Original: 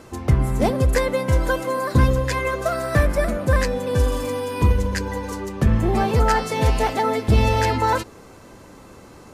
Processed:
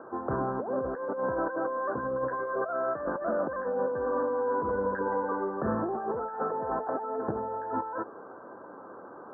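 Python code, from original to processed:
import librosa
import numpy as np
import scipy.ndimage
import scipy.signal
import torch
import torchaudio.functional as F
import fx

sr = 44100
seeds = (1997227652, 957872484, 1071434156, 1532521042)

y = scipy.signal.sosfilt(scipy.signal.butter(2, 390.0, 'highpass', fs=sr, output='sos'), x)
y = fx.over_compress(y, sr, threshold_db=-29.0, ratio=-1.0)
y = scipy.signal.sosfilt(scipy.signal.butter(16, 1600.0, 'lowpass', fs=sr, output='sos'), y)
y = y * librosa.db_to_amplitude(-1.5)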